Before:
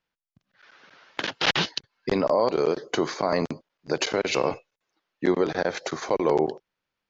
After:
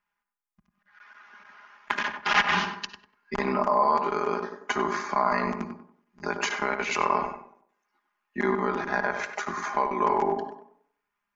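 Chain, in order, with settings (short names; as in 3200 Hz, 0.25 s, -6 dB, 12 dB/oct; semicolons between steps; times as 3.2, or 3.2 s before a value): ten-band EQ 125 Hz -5 dB, 500 Hz -11 dB, 1000 Hz +9 dB, 2000 Hz +4 dB, 4000 Hz -10 dB; granular stretch 1.6×, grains 26 ms; tape echo 96 ms, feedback 39%, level -5 dB, low-pass 1500 Hz; on a send at -16.5 dB: reverb RT60 0.35 s, pre-delay 47 ms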